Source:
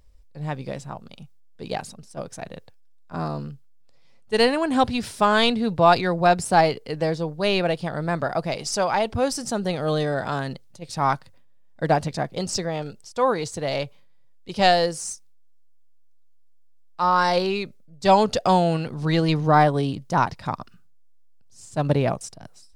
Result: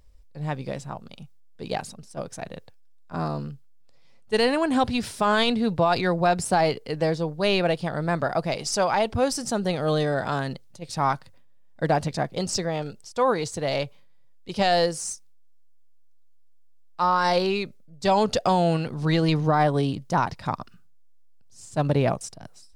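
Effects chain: peak limiter -12 dBFS, peak gain reduction 8 dB

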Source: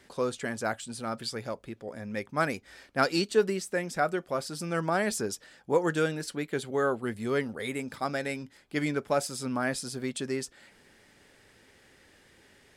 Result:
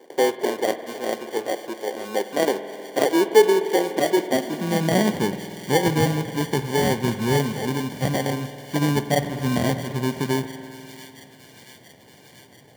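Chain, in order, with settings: high-order bell 4.7 kHz -15 dB; in parallel at +2 dB: peak limiter -21 dBFS, peak gain reduction 10.5 dB; on the sum: sample-rate reducer 1.3 kHz, jitter 0%; high-pass sweep 390 Hz -> 130 Hz, 3.66–5.54 s; on a send: feedback echo behind a high-pass 683 ms, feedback 70%, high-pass 2.1 kHz, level -12.5 dB; on the sum: spring tank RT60 3.1 s, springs 49 ms, chirp 35 ms, DRR 10.5 dB

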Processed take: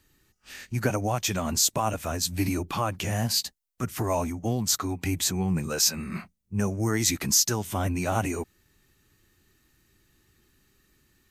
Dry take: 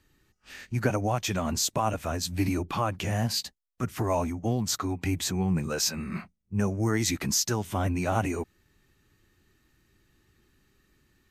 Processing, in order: treble shelf 5.3 kHz +8.5 dB

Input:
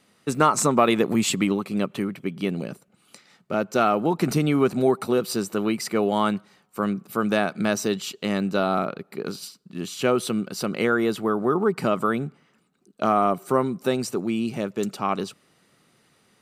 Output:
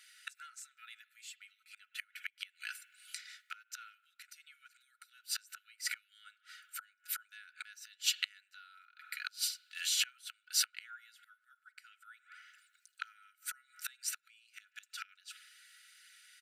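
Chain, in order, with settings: comb 4.1 ms, depth 53%; hum 50 Hz, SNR 12 dB; spring tank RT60 1 s, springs 44 ms, chirp 60 ms, DRR 18 dB; inverted gate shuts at -16 dBFS, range -29 dB; brick-wall FIR high-pass 1.3 kHz; trim +3.5 dB

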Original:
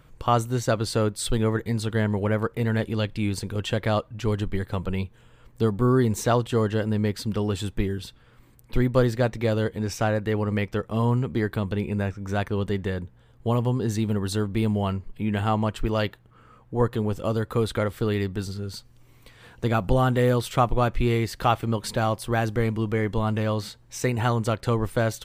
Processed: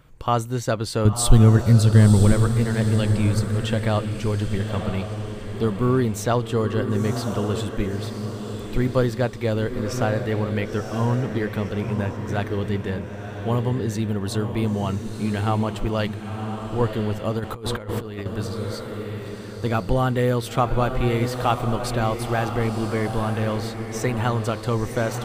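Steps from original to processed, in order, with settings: 1.05–2.32 s: tone controls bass +14 dB, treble +8 dB; echo that smears into a reverb 1002 ms, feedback 41%, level -6.5 dB; 17.39–18.26 s: compressor with a negative ratio -28 dBFS, ratio -0.5

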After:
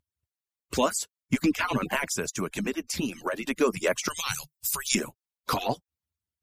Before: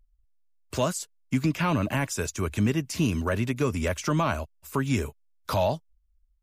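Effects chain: harmonic-percussive separation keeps percussive; 2.07–3.44 s: compression, threshold -30 dBFS, peak gain reduction 7.5 dB; 4.08–4.95 s: FFT filter 150 Hz 0 dB, 230 Hz -28 dB, 2.5 kHz 0 dB, 4.7 kHz +13 dB; trim +4 dB

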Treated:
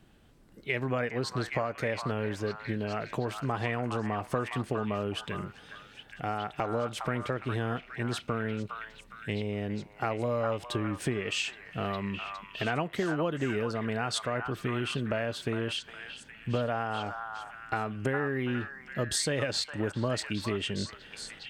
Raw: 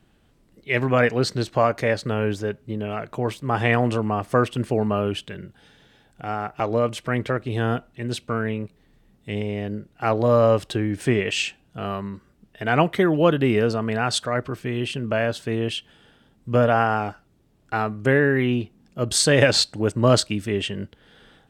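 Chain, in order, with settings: compression 6:1, threshold -28 dBFS, peak gain reduction 15.5 dB; on a send: repeats whose band climbs or falls 410 ms, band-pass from 1.2 kHz, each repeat 0.7 oct, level -2.5 dB

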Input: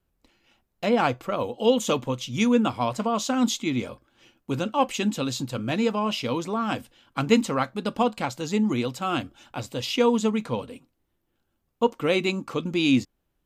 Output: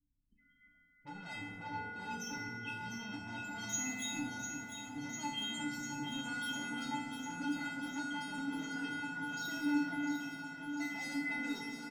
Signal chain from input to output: gliding tape speed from 75% -> 151%; loudest bins only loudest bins 16; bass shelf 280 Hz +12 dB; comb 1.5 ms, depth 61%; peak limiter -13.5 dBFS, peak gain reduction 9.5 dB; saturation -30 dBFS, distortion -6 dB; peaking EQ 400 Hz -7 dB 2.3 oct; feedback comb 290 Hz, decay 0.51 s, harmonics odd, mix 100%; echo whose repeats swap between lows and highs 350 ms, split 2.2 kHz, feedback 88%, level -6.5 dB; on a send at -2 dB: reverberation RT60 2.0 s, pre-delay 25 ms; on the sum: trim +15.5 dB

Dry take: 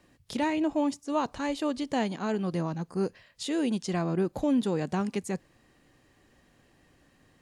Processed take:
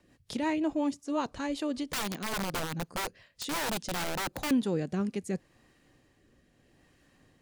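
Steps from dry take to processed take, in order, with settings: rotary cabinet horn 5.5 Hz, later 0.75 Hz, at 3.60 s; 1.87–4.51 s: integer overflow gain 27.5 dB

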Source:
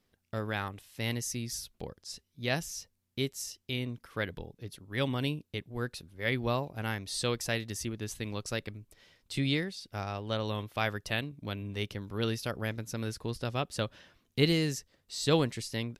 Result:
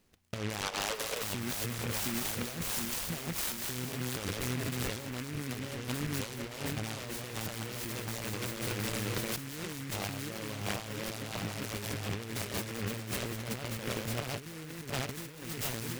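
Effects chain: backward echo that repeats 357 ms, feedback 68%, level -2 dB; 0.61–1.23 s: steep high-pass 420 Hz 96 dB/octave; compressor with a negative ratio -38 dBFS, ratio -1; feedback echo behind a high-pass 200 ms, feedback 55%, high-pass 4.6 kHz, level -7.5 dB; delay time shaken by noise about 1.8 kHz, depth 0.2 ms

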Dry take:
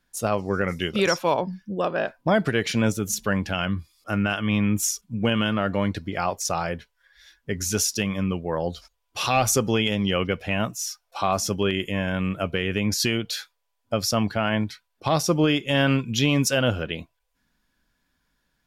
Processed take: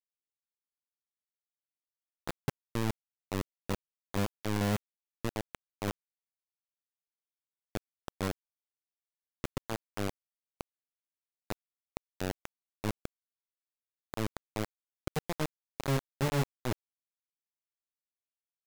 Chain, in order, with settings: inverse Chebyshev low-pass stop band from 810 Hz, stop band 70 dB; bit crusher 4-bit; trim -5.5 dB

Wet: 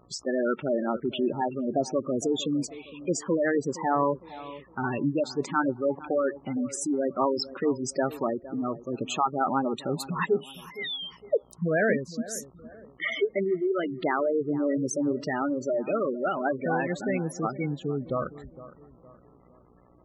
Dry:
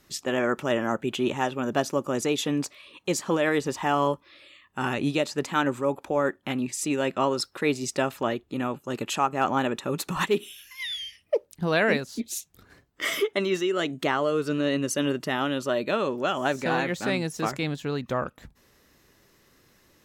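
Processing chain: mains buzz 60 Hz, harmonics 22, -59 dBFS -2 dB/octave; spectral gate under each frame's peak -10 dB strong; bucket-brigade echo 461 ms, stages 4096, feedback 40%, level -16.5 dB

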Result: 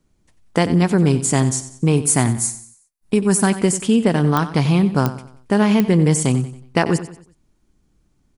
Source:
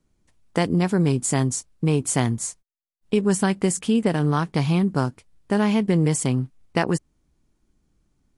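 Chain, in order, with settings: 1.96–3.47 s: graphic EQ with 31 bands 500 Hz -8 dB, 3.15 kHz -7 dB, 10 kHz +9 dB; feedback delay 92 ms, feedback 40%, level -13.5 dB; clicks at 4.37/5.06/5.80 s, -10 dBFS; trim +4.5 dB

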